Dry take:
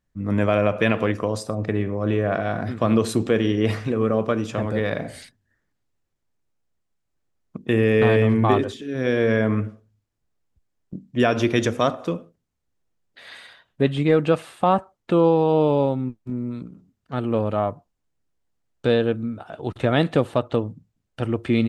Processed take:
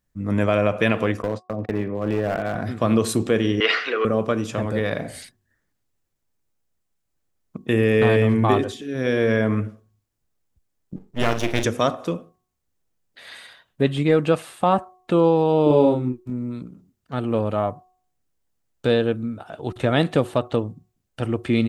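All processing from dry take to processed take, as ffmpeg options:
-filter_complex "[0:a]asettb=1/sr,asplit=3[s0][s1][s2];[s0]atrim=end=1.224[s3];[s1]atrim=start=1.22:end=2.55,asetpts=PTS-STARTPTS,afade=t=in:d=0.004:c=qsin,afade=t=out:st=1.326:d=0.004:c=qsin,agate=range=0.01:threshold=0.0355:ratio=16:release=100:detection=peak,highpass=120,lowpass=2700,aeval=exprs='clip(val(0),-1,0.0794)':c=same[s4];[s2]atrim=start=2.546[s5];[s3][s4]acrossfade=d=0.004:c1=hsin:c2=qsin[s6];[s6][s5]acrossfade=d=0.004:c1=qsin:c2=hsin,asettb=1/sr,asplit=3[s7][s8][s9];[s7]atrim=end=3.604[s10];[s8]atrim=start=3.6:end=4.05,asetpts=PTS-STARTPTS,afade=t=in:d=0.004:c=qsin,afade=t=out:st=0.446:d=0.004:c=qsin,acontrast=77,highpass=f=460:w=0.5412,highpass=f=460:w=1.3066,equalizer=f=590:t=q:w=4:g=-8,equalizer=f=900:t=q:w=4:g=-6,equalizer=f=1400:t=q:w=4:g=10,equalizer=f=2000:t=q:w=4:g=6,equalizer=f=2900:t=q:w=4:g=8,equalizer=f=4400:t=q:w=4:g=5,lowpass=f=4900:w=0.5412,lowpass=f=4900:w=1.3066[s11];[s9]atrim=start=4.046[s12];[s10][s11]acrossfade=d=0.004:c1=hsin:c2=qsin[s13];[s13][s12]acrossfade=d=0.004:c1=qsin:c2=hsin,asettb=1/sr,asplit=3[s14][s15][s16];[s14]atrim=end=10.964[s17];[s15]atrim=start=10.96:end=11.64,asetpts=PTS-STARTPTS,afade=t=in:d=0.004:c=qsin,afade=t=out:st=0.676:d=0.004:c=qsin,aeval=exprs='max(val(0),0)':c=same,asplit=2[s18][s19];[s19]adelay=43,volume=0.316[s20];[s18][s20]amix=inputs=2:normalize=0,atrim=end_sample=29988[s21];[s16]atrim=start=11.636[s22];[s17][s21]acrossfade=d=0.004:c1=hsin:c2=qsin[s23];[s23][s22]acrossfade=d=0.004:c1=qsin:c2=hsin,asettb=1/sr,asplit=3[s24][s25][s26];[s24]atrim=end=15.664[s27];[s25]atrim=start=15.66:end=16.24,asetpts=PTS-STARTPTS,afade=t=in:d=0.004:c=qsin,afade=t=out:st=0.576:d=0.004:c=qsin,equalizer=f=340:t=o:w=0.35:g=14.5,asplit=2[s28][s29];[s29]adelay=40,volume=0.668[s30];[s28][s30]amix=inputs=2:normalize=0,atrim=end_sample=25578[s31];[s26]atrim=start=16.236[s32];[s27][s31]acrossfade=d=0.004:c1=hsin:c2=qsin[s33];[s33][s32]acrossfade=d=0.004:c1=qsin:c2=hsin,highshelf=f=7500:g=9,bandreject=f=367.2:t=h:w=4,bandreject=f=734.4:t=h:w=4,bandreject=f=1101.6:t=h:w=4"

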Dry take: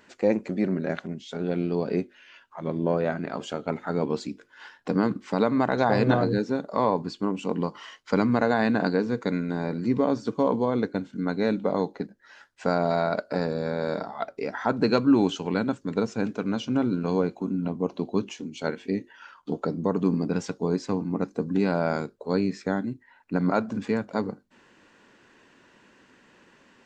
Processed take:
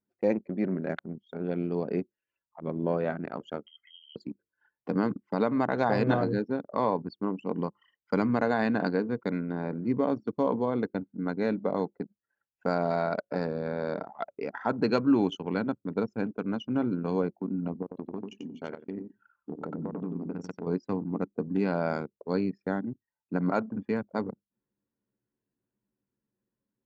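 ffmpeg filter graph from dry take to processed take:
-filter_complex "[0:a]asettb=1/sr,asplit=3[s0][s1][s2];[s0]atrim=end=3.664[s3];[s1]atrim=start=3.66:end=4.16,asetpts=PTS-STARTPTS,afade=t=in:d=0.004:c=qsin,afade=t=out:st=0.496:d=0.004:c=qsin,acompressor=threshold=0.0224:ratio=10:attack=3.2:release=140:knee=1:detection=peak,equalizer=f=700:t=o:w=0.63:g=-13,lowpass=f=2900:t=q:w=0.5098,lowpass=f=2900:t=q:w=0.6013,lowpass=f=2900:t=q:w=0.9,lowpass=f=2900:t=q:w=2.563,afreqshift=-3400[s4];[s2]atrim=start=4.156[s5];[s3][s4]acrossfade=d=0.004:c1=hsin:c2=qsin[s6];[s6][s5]acrossfade=d=0.004:c1=qsin:c2=hsin,asettb=1/sr,asplit=3[s7][s8][s9];[s7]atrim=end=17.824[s10];[s8]atrim=start=17.82:end=20.67,asetpts=PTS-STARTPTS,afade=t=in:d=0.004:c=qsin,afade=t=out:st=2.846:d=0.004:c=qsin,acompressor=threshold=0.0447:ratio=8:attack=3.2:release=140:knee=1:detection=peak,aecho=1:1:92|184|276:0.631|0.126|0.0252,atrim=end_sample=125685[s11];[s9]atrim=start=20.666[s12];[s10][s11]acrossfade=d=0.004:c1=hsin:c2=qsin[s13];[s13][s12]acrossfade=d=0.004:c1=qsin:c2=hsin,anlmdn=15.8,highpass=85,bandreject=f=3900:w=10,volume=0.668"

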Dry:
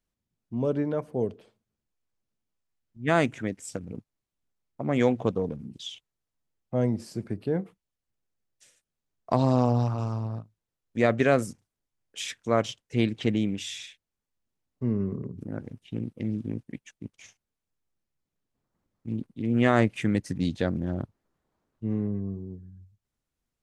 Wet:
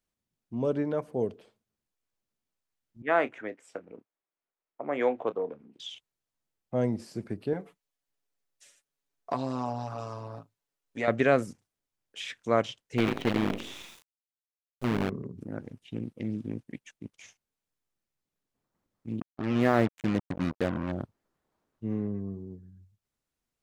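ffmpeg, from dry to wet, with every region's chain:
-filter_complex "[0:a]asettb=1/sr,asplit=3[s0][s1][s2];[s0]atrim=end=3.024[s3];[s1]atrim=start=3.02:end=5.8,asetpts=PTS-STARTPTS,afade=t=in:d=0.004:c=qsin,afade=t=out:st=2.776:d=0.004:c=qsin,acrossover=split=320 2700:gain=0.0891 1 0.112[s4][s5][s6];[s4][s5][s6]amix=inputs=3:normalize=0,asplit=2[s7][s8];[s8]adelay=28,volume=0.2[s9];[s7][s9]amix=inputs=2:normalize=0,atrim=end_sample=122598[s10];[s2]atrim=start=5.796[s11];[s3][s10]acrossfade=d=0.004:c1=hsin:c2=qsin[s12];[s12][s11]acrossfade=d=0.004:c1=qsin:c2=hsin,asettb=1/sr,asplit=3[s13][s14][s15];[s13]atrim=end=7.534[s16];[s14]atrim=start=7.53:end=11.08,asetpts=PTS-STARTPTS,afade=t=in:d=0.004:c=qsin,afade=t=out:st=3.546:d=0.004:c=qsin,aecho=1:1:7.1:0.68,atrim=end_sample=156555,acompressor=threshold=0.0501:ratio=2:attack=3.2:release=140:knee=1:detection=peak,equalizer=f=63:t=o:w=2.6:g=-12[s17];[s15]atrim=start=11.076[s18];[s16][s17]acrossfade=d=0.004:c1=hsin:c2=qsin[s19];[s19][s18]acrossfade=d=0.004:c1=qsin:c2=hsin,asettb=1/sr,asplit=3[s20][s21][s22];[s20]atrim=end=12.984[s23];[s21]atrim=start=12.98:end=15.1,asetpts=PTS-STARTPTS,afade=t=in:d=0.004:c=qsin,afade=t=out:st=2.116:d=0.004:c=qsin,asplit=6[s24][s25][s26][s27][s28][s29];[s25]adelay=83,afreqshift=32,volume=0.422[s30];[s26]adelay=166,afreqshift=64,volume=0.174[s31];[s27]adelay=249,afreqshift=96,volume=0.0708[s32];[s28]adelay=332,afreqshift=128,volume=0.0292[s33];[s29]adelay=415,afreqshift=160,volume=0.0119[s34];[s24][s30][s31][s32][s33][s34]amix=inputs=6:normalize=0,atrim=end_sample=93492,acrusher=bits=5:dc=4:mix=0:aa=0.000001[s35];[s22]atrim=start=15.096[s36];[s23][s35]acrossfade=d=0.004:c1=hsin:c2=qsin[s37];[s37][s36]acrossfade=d=0.004:c1=qsin:c2=hsin,asettb=1/sr,asplit=3[s38][s39][s40];[s38]atrim=end=19.204[s41];[s39]atrim=start=19.2:end=20.92,asetpts=PTS-STARTPTS,afade=t=in:d=0.004:c=qsin,afade=t=out:st=1.716:d=0.004:c=qsin,lowpass=f=1400:p=1,acrusher=bits=4:mix=0:aa=0.5[s42];[s40]atrim=start=20.916[s43];[s41][s42]acrossfade=d=0.004:c1=hsin:c2=qsin[s44];[s44][s43]acrossfade=d=0.004:c1=qsin:c2=hsin,acrossover=split=3700[s45][s46];[s46]acompressor=threshold=0.00316:ratio=4:attack=1:release=60[s47];[s45][s47]amix=inputs=2:normalize=0,lowshelf=f=190:g=-6.5"

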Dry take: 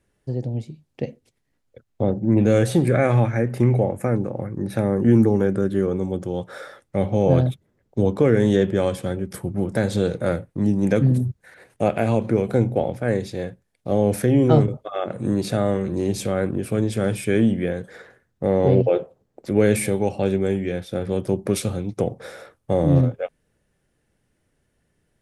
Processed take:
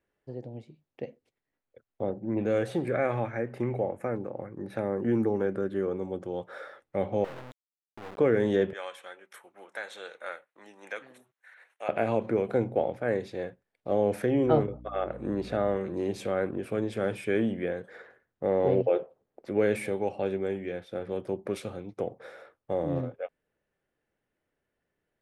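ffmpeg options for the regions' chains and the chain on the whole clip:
-filter_complex "[0:a]asettb=1/sr,asplit=3[s0][s1][s2];[s0]atrim=end=7.244[s3];[s1]atrim=start=7.24:end=8.18,asetpts=PTS-STARTPTS,afade=t=in:d=0.004:c=qsin,afade=t=out:st=0.936:d=0.004:c=qsin,lowpass=4700,aeval=exprs='(tanh(39.8*val(0)+0.75)-tanh(0.75))/39.8':c=same,aeval=exprs='val(0)*gte(abs(val(0)),0.0266)':c=same[s4];[s2]atrim=start=8.176[s5];[s3][s4]acrossfade=d=0.004:c1=hsin:c2=qsin[s6];[s6][s5]acrossfade=d=0.004:c1=qsin:c2=hsin,asettb=1/sr,asplit=3[s7][s8][s9];[s7]atrim=end=8.734[s10];[s8]atrim=start=8.73:end=11.89,asetpts=PTS-STARTPTS,afade=t=in:d=0.004:c=qsin,afade=t=out:st=3.156:d=0.004:c=qsin,highpass=1200,bandreject=f=4800:w=5.3[s11];[s9]atrim=start=11.886[s12];[s10][s11]acrossfade=d=0.004:c1=hsin:c2=qsin[s13];[s13][s12]acrossfade=d=0.004:c1=qsin:c2=hsin,asettb=1/sr,asplit=3[s14][s15][s16];[s14]atrim=end=14.464[s17];[s15]atrim=start=14.46:end=15.77,asetpts=PTS-STARTPTS,afade=t=in:d=0.004:c=qsin,afade=t=out:st=1.306:d=0.004:c=qsin,highshelf=f=6500:g=-10.5,aeval=exprs='val(0)+0.0251*(sin(2*PI*60*n/s)+sin(2*PI*2*60*n/s)/2+sin(2*PI*3*60*n/s)/3+sin(2*PI*4*60*n/s)/4+sin(2*PI*5*60*n/s)/5)':c=same[s18];[s16]atrim=start=15.766[s19];[s17][s18]acrossfade=d=0.004:c1=hsin:c2=qsin[s20];[s20][s19]acrossfade=d=0.004:c1=qsin:c2=hsin,bass=f=250:g=-11,treble=f=4000:g=-13,dynaudnorm=f=380:g=31:m=1.58,volume=0.447"

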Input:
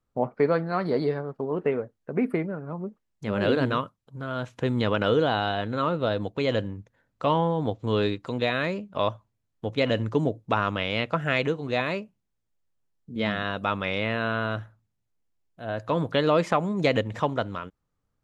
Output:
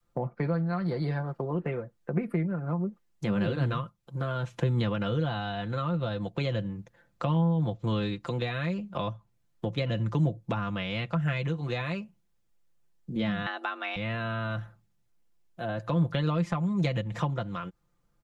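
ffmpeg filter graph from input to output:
-filter_complex "[0:a]asettb=1/sr,asplit=3[s0][s1][s2];[s0]atrim=end=13.464[s3];[s1]atrim=start=13.46:end=13.96,asetpts=PTS-STARTPTS,afade=t=in:d=0.004:c=qsin,afade=t=out:st=0.496:d=0.004:c=qsin,highpass=f=250:p=1,equalizer=f=1400:w=0.34:g=7.5,afreqshift=140[s4];[s2]atrim=start=13.956[s5];[s3][s4]acrossfade=d=0.004:c1=hsin:c2=qsin[s6];[s6][s5]acrossfade=d=0.004:c1=qsin:c2=hsin,adynamicequalizer=threshold=0.0158:dfrequency=330:dqfactor=0.8:tfrequency=330:tqfactor=0.8:attack=5:release=100:ratio=0.375:range=3:mode=cutabove:tftype=bell,aecho=1:1:5.8:0.65,acrossover=split=190[s7][s8];[s8]acompressor=threshold=0.0158:ratio=6[s9];[s7][s9]amix=inputs=2:normalize=0,volume=1.58"

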